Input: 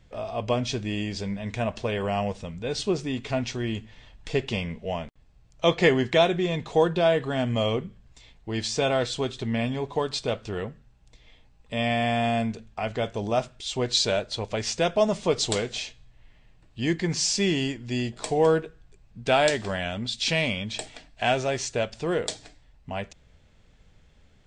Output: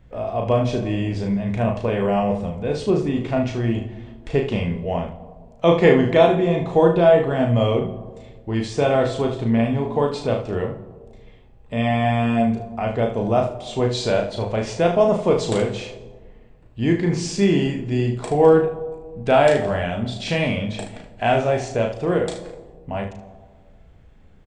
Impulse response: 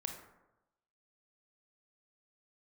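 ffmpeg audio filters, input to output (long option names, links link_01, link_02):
-filter_complex "[0:a]equalizer=frequency=5500:width=0.51:gain=-14,aecho=1:1:35|75:0.631|0.335,asplit=2[link_01][link_02];[1:a]atrim=start_sample=2205,asetrate=24696,aresample=44100[link_03];[link_02][link_03]afir=irnorm=-1:irlink=0,volume=-7dB[link_04];[link_01][link_04]amix=inputs=2:normalize=0,volume=2dB"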